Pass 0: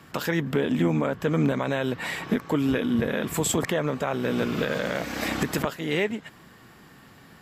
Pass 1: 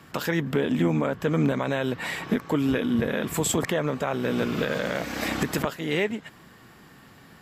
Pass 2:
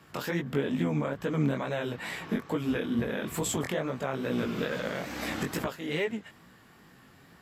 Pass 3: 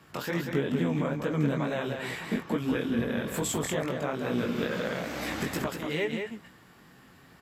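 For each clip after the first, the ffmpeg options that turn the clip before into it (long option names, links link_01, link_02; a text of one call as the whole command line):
ffmpeg -i in.wav -af anull out.wav
ffmpeg -i in.wav -af "flanger=delay=16:depth=6.8:speed=2.3,volume=-2.5dB" out.wav
ffmpeg -i in.wav -af "aecho=1:1:187:0.531" out.wav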